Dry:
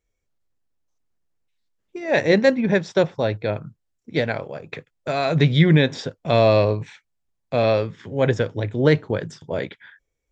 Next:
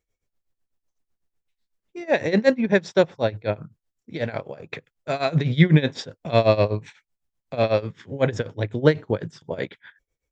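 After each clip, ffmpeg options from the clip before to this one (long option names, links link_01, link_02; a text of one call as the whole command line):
ffmpeg -i in.wav -af "tremolo=f=8:d=0.87,volume=1.5dB" out.wav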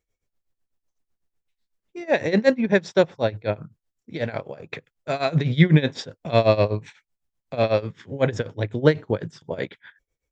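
ffmpeg -i in.wav -af anull out.wav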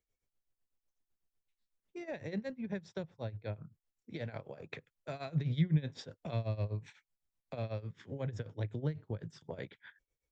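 ffmpeg -i in.wav -filter_complex "[0:a]acrossover=split=150[link_01][link_02];[link_02]acompressor=threshold=-32dB:ratio=8[link_03];[link_01][link_03]amix=inputs=2:normalize=0,volume=-8dB" out.wav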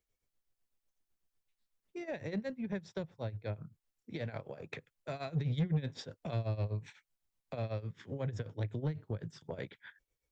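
ffmpeg -i in.wav -af "asoftclip=type=tanh:threshold=-28dB,volume=2dB" out.wav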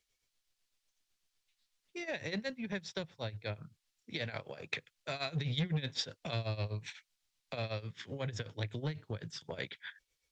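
ffmpeg -i in.wav -af "equalizer=frequency=4100:width_type=o:width=2.9:gain=14.5,volume=-2.5dB" out.wav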